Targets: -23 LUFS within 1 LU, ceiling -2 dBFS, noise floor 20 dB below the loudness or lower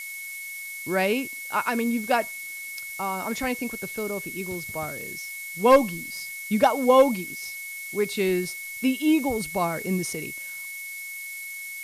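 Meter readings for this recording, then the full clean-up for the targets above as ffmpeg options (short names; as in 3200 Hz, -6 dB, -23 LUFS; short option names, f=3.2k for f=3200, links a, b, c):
steady tone 2200 Hz; tone level -35 dBFS; noise floor -37 dBFS; noise floor target -46 dBFS; loudness -26.0 LUFS; peak -7.5 dBFS; loudness target -23.0 LUFS
-> -af "bandreject=f=2.2k:w=30"
-af "afftdn=nr=9:nf=-37"
-af "volume=3dB"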